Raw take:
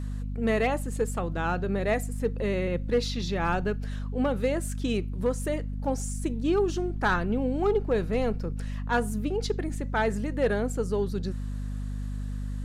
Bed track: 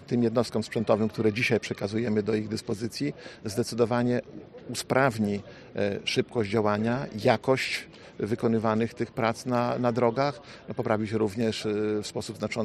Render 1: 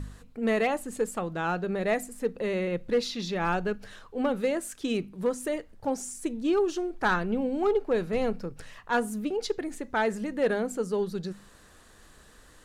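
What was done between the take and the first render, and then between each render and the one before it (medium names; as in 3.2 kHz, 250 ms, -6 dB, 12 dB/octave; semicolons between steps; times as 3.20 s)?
de-hum 50 Hz, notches 5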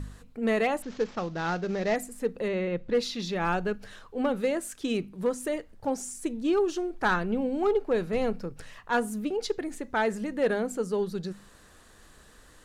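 0.82–1.96 s: CVSD coder 32 kbps; 2.48–2.95 s: distance through air 92 m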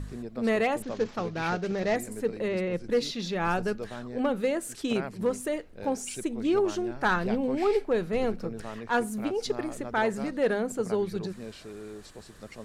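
add bed track -14.5 dB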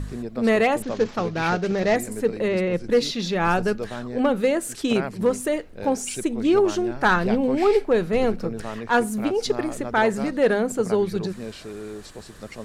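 trim +6.5 dB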